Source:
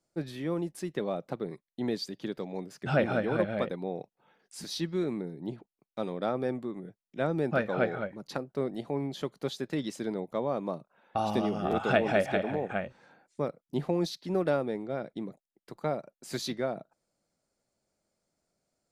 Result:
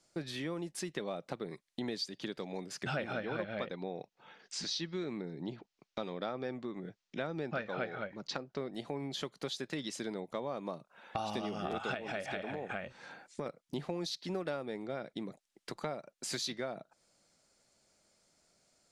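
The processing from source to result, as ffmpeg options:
ffmpeg -i in.wav -filter_complex "[0:a]asettb=1/sr,asplit=3[link_01][link_02][link_03];[link_01]atrim=end=3.134[link_04];[link_02]atrim=start=3.13:end=8.72,asetpts=PTS-STARTPTS,afade=type=in:duration=0.004:curve=qsin,afade=type=out:start_time=5.586:duration=0.004:curve=qsin,lowpass=frequency=6500:width=0.5412,lowpass=frequency=6500:width=1.3066[link_05];[link_03]atrim=start=8.716[link_06];[link_04][link_05]acrossfade=duration=0.004:curve1=hsin:curve2=qsin[link_07];[link_07][link_06]acrossfade=duration=0.004:curve1=qsin:curve2=hsin,asettb=1/sr,asplit=3[link_08][link_09][link_10];[link_08]atrim=end=11.944[link_11];[link_09]atrim=start=11.94:end=13.46,asetpts=PTS-STARTPTS,afade=type=in:duration=0.004:curve=qsin,afade=type=out:start_time=1.516:duration=0.004:curve=qsin,acompressor=threshold=-34dB:ratio=2:attack=3.2:release=140:knee=1:detection=peak[link_12];[link_10]atrim=start=13.456[link_13];[link_11][link_12]acrossfade=duration=0.004:curve1=hsin:curve2=qsin[link_14];[link_14][link_13]acrossfade=duration=0.004:curve1=qsin:curve2=hsin,lowpass=8500,tiltshelf=frequency=1300:gain=-5,acompressor=threshold=-49dB:ratio=3,volume=9.5dB" out.wav

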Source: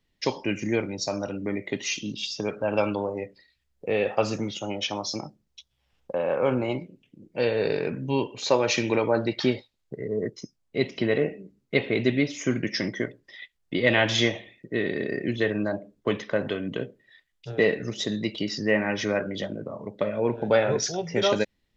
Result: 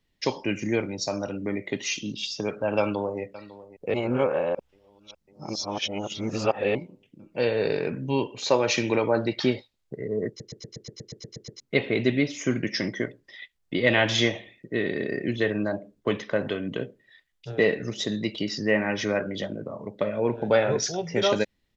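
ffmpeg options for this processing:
ffmpeg -i in.wav -filter_complex "[0:a]asplit=2[link_01][link_02];[link_02]afade=type=in:start_time=2.79:duration=0.01,afade=type=out:start_time=3.21:duration=0.01,aecho=0:1:550|1100|1650|2200|2750|3300|3850|4400:0.141254|0.0988776|0.0692143|0.04845|0.033915|0.0237405|0.0166184|0.0116329[link_03];[link_01][link_03]amix=inputs=2:normalize=0,asplit=14[link_04][link_05][link_06][link_07][link_08][link_09][link_10][link_11][link_12][link_13][link_14][link_15][link_16][link_17];[link_04]atrim=end=3.942[link_18];[link_05]atrim=start=3.938:end=6.752,asetpts=PTS-STARTPTS,areverse[link_19];[link_06]atrim=start=6.748:end=10.402[link_20];[link_07]atrim=start=10.278:end=10.402[link_21];[link_08]atrim=start=10.278:end=10.402[link_22];[link_09]atrim=start=10.278:end=10.402[link_23];[link_10]atrim=start=10.278:end=10.402[link_24];[link_11]atrim=start=10.278:end=10.402[link_25];[link_12]atrim=start=10.278:end=10.402[link_26];[link_13]atrim=start=10.278:end=10.402[link_27];[link_14]atrim=start=10.278:end=10.402[link_28];[link_15]atrim=start=10.278:end=10.402[link_29];[link_16]atrim=start=10.278:end=10.402[link_30];[link_17]atrim=start=11.598[link_31];[link_18][link_19]acrossfade=duration=0.004:curve1=hsin:curve2=hsin[link_32];[link_32][link_20]acrossfade=duration=0.004:curve1=hsin:curve2=hsin[link_33];[link_33][link_21]acrossfade=duration=0.004:curve1=hsin:curve2=hsin[link_34];[link_34][link_22]acrossfade=duration=0.004:curve1=hsin:curve2=hsin[link_35];[link_35][link_23]acrossfade=duration=0.004:curve1=hsin:curve2=hsin[link_36];[link_36][link_24]acrossfade=duration=0.004:curve1=hsin:curve2=hsin[link_37];[link_37][link_25]acrossfade=duration=0.004:curve1=hsin:curve2=hsin[link_38];[link_38][link_26]acrossfade=duration=0.004:curve1=hsin:curve2=hsin[link_39];[link_39][link_27]acrossfade=duration=0.004:curve1=hsin:curve2=hsin[link_40];[link_40][link_28]acrossfade=duration=0.004:curve1=hsin:curve2=hsin[link_41];[link_41][link_29]acrossfade=duration=0.004:curve1=hsin:curve2=hsin[link_42];[link_42][link_30]acrossfade=duration=0.004:curve1=hsin:curve2=hsin[link_43];[link_43][link_31]acrossfade=duration=0.004:curve1=hsin:curve2=hsin" out.wav

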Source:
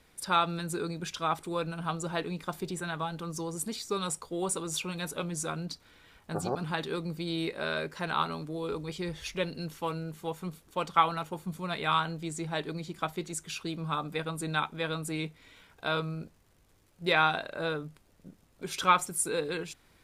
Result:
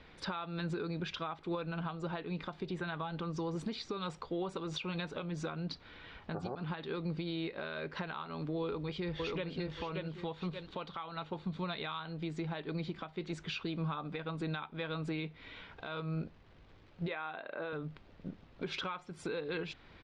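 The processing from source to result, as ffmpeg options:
ffmpeg -i in.wav -filter_complex "[0:a]asplit=2[link_01][link_02];[link_02]afade=type=in:start_time=8.61:duration=0.01,afade=type=out:start_time=9.5:duration=0.01,aecho=0:1:580|1160|1740:0.668344|0.133669|0.0267338[link_03];[link_01][link_03]amix=inputs=2:normalize=0,asettb=1/sr,asplit=3[link_04][link_05][link_06];[link_04]atrim=end=10.234[link_07];[link_05]atrim=start=10.23:end=12.13,asetpts=PTS-STARTPTS,afade=type=in:duration=0.004:curve=qsin,afade=type=out:start_time=1.896:duration=0.004:curve=qsin,equalizer=frequency=3900:width_type=o:width=0.31:gain=8[link_08];[link_06]atrim=start=12.126[link_09];[link_07][link_08]acrossfade=duration=0.004:curve1=hsin:curve2=qsin[link_10];[link_10][link_09]acrossfade=duration=0.004:curve1=qsin:curve2=hsin,asettb=1/sr,asplit=3[link_11][link_12][link_13];[link_11]atrim=end=17.084[link_14];[link_12]atrim=start=17.08:end=17.73,asetpts=PTS-STARTPTS,afade=type=in:duration=0.004:curve=qsin,afade=type=out:start_time=0.646:duration=0.004:curve=qsin,highpass=250,lowpass=2800[link_15];[link_13]atrim=start=17.726[link_16];[link_14][link_15]acrossfade=duration=0.004:curve1=hsin:curve2=qsin[link_17];[link_17][link_16]acrossfade=duration=0.004:curve1=qsin:curve2=hsin,lowpass=frequency=4000:width=0.5412,lowpass=frequency=4000:width=1.3066,acompressor=threshold=-37dB:ratio=4,alimiter=level_in=11dB:limit=-24dB:level=0:latency=1:release=365,volume=-11dB,volume=6.5dB" out.wav

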